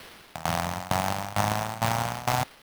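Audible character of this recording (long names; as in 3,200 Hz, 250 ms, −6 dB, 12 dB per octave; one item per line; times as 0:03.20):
a quantiser's noise floor 8 bits, dither triangular
tremolo saw down 2.2 Hz, depth 90%
aliases and images of a low sample rate 7,300 Hz, jitter 20%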